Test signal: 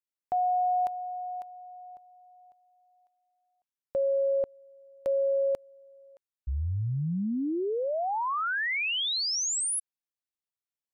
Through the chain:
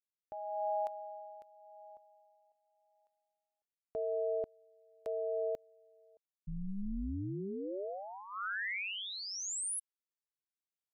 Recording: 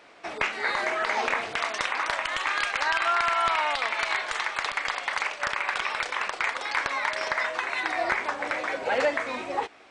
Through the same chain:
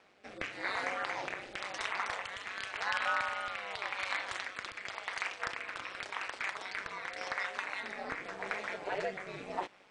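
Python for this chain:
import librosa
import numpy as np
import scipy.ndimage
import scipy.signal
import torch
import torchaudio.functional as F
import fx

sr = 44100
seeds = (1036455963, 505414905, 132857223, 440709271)

y = fx.rotary(x, sr, hz=0.9)
y = y * np.sin(2.0 * np.pi * 97.0 * np.arange(len(y)) / sr)
y = y * 10.0 ** (-4.5 / 20.0)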